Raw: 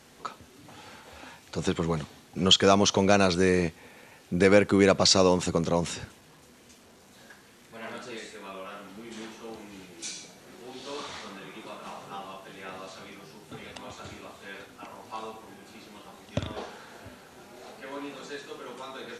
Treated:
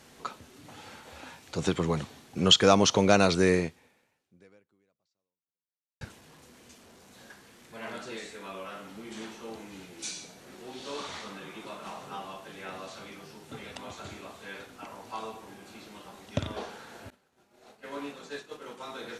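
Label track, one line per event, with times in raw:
3.540000	6.010000	fade out exponential
17.100000	18.860000	downward expander −39 dBFS

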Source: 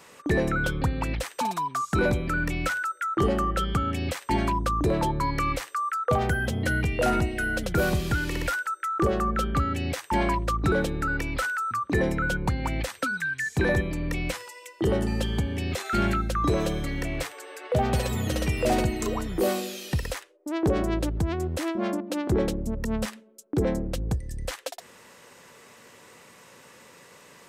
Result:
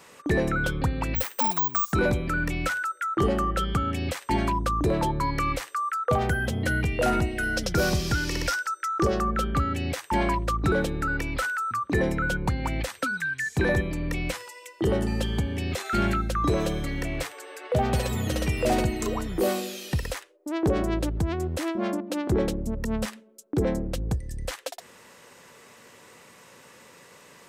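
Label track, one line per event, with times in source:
1.150000	1.930000	bad sample-rate conversion rate divided by 2×, down none, up zero stuff
7.430000	9.210000	parametric band 5,400 Hz +12 dB 0.58 octaves

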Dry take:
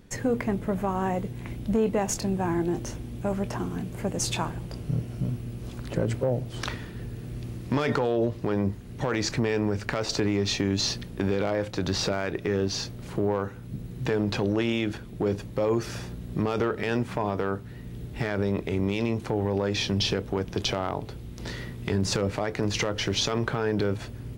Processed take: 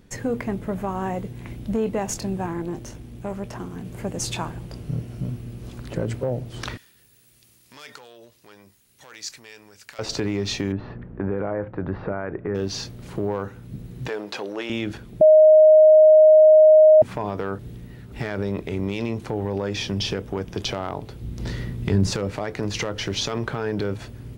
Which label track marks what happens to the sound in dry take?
2.460000	3.850000	tube saturation drive 21 dB, bias 0.6
6.770000	9.990000	first-order pre-emphasis coefficient 0.97
10.720000	12.550000	low-pass filter 1,700 Hz 24 dB per octave
14.080000	14.700000	high-pass filter 440 Hz
15.210000	17.020000	beep over 622 Hz −8 dBFS
17.590000	18.120000	reverse
19.600000	20.640000	notch filter 4,100 Hz
21.210000	22.110000	low-shelf EQ 300 Hz +9 dB

